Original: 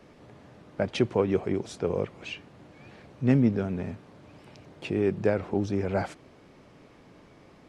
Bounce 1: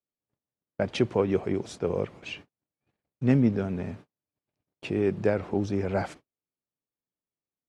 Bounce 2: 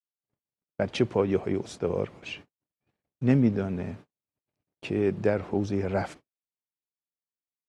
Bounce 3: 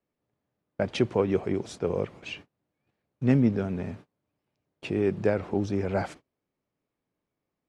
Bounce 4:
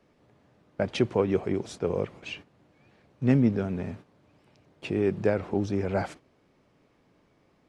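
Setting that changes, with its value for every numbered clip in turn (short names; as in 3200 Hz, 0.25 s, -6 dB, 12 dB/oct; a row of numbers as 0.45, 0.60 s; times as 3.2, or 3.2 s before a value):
gate, range: -46, -59, -31, -11 dB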